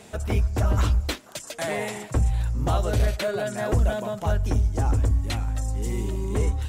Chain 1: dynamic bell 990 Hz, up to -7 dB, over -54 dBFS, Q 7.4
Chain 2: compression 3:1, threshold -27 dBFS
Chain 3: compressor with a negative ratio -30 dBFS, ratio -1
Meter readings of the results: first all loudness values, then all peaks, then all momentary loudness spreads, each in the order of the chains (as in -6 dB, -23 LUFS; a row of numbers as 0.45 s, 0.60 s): -25.5 LUFS, -31.0 LUFS, -30.5 LUFS; -13.5 dBFS, -17.0 dBFS, -13.5 dBFS; 6 LU, 2 LU, 7 LU